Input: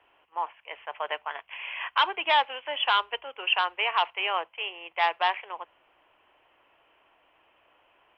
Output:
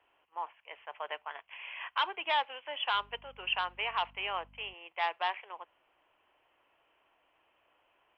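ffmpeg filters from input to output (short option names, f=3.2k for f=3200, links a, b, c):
-filter_complex "[0:a]asettb=1/sr,asplit=3[a][b][c];[a]atrim=end=2.934[d];[b]atrim=start=2.93:end=4.74,asetpts=PTS-STARTPTS,afade=t=in:d=0.004:c=qsin,afade=t=out:st=1.806:d=0.004:c=qsin,aeval=exprs='val(0)+0.00282*(sin(2*PI*50*n/s)+sin(2*PI*2*50*n/s)/2+sin(2*PI*3*50*n/s)/3+sin(2*PI*4*50*n/s)/4+sin(2*PI*5*50*n/s)/5)':c=same[e];[c]atrim=start=4.736[f];[d][e]acrossfade=d=0.004:c1=hsin:c2=qsin[g];[g][f]acrossfade=d=0.004:c1=qsin:c2=hsin,volume=-7.5dB"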